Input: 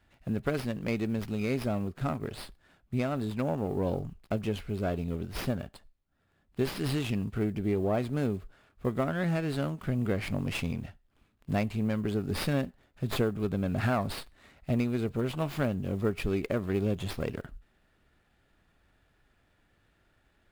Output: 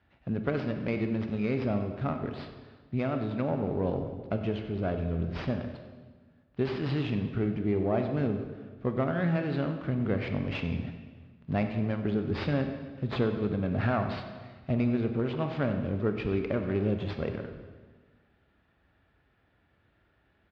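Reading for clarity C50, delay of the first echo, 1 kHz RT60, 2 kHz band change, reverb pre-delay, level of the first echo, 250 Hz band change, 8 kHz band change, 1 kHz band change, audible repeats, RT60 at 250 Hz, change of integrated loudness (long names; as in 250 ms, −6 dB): 7.0 dB, 95 ms, 1.4 s, 0.0 dB, 27 ms, −15.5 dB, +1.0 dB, below −20 dB, +0.5 dB, 1, 1.7 s, +1.0 dB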